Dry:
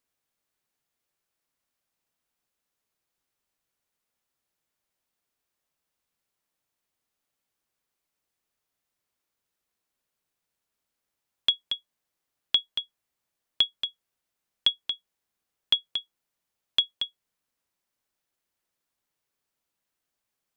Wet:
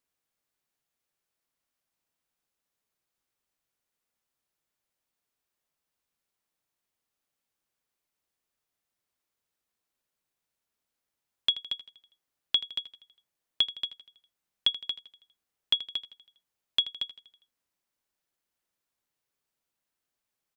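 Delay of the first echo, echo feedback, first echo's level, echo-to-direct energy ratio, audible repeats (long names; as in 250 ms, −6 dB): 81 ms, 53%, −15.0 dB, −13.5 dB, 4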